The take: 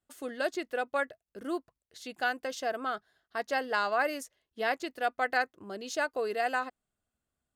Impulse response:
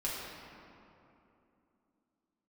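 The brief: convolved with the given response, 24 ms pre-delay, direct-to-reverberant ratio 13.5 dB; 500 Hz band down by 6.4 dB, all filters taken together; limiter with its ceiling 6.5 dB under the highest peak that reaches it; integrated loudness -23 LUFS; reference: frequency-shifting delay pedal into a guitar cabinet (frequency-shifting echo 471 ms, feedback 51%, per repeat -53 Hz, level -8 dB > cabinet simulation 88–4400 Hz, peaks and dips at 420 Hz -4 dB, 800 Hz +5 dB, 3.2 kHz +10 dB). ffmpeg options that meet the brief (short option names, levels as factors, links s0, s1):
-filter_complex "[0:a]equalizer=f=500:t=o:g=-9,alimiter=limit=0.0631:level=0:latency=1,asplit=2[s0][s1];[1:a]atrim=start_sample=2205,adelay=24[s2];[s1][s2]afir=irnorm=-1:irlink=0,volume=0.126[s3];[s0][s3]amix=inputs=2:normalize=0,asplit=7[s4][s5][s6][s7][s8][s9][s10];[s5]adelay=471,afreqshift=-53,volume=0.398[s11];[s6]adelay=942,afreqshift=-106,volume=0.204[s12];[s7]adelay=1413,afreqshift=-159,volume=0.104[s13];[s8]adelay=1884,afreqshift=-212,volume=0.0531[s14];[s9]adelay=2355,afreqshift=-265,volume=0.0269[s15];[s10]adelay=2826,afreqshift=-318,volume=0.0138[s16];[s4][s11][s12][s13][s14][s15][s16]amix=inputs=7:normalize=0,highpass=88,equalizer=f=420:t=q:w=4:g=-4,equalizer=f=800:t=q:w=4:g=5,equalizer=f=3200:t=q:w=4:g=10,lowpass=f=4400:w=0.5412,lowpass=f=4400:w=1.3066,volume=4.22"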